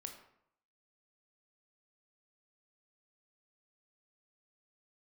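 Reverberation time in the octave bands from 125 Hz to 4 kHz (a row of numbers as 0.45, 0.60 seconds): 0.80, 0.70, 0.70, 0.75, 0.60, 0.45 seconds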